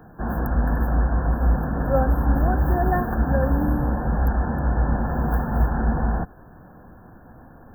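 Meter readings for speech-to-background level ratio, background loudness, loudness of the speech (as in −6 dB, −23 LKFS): −4.5 dB, −23.5 LKFS, −28.0 LKFS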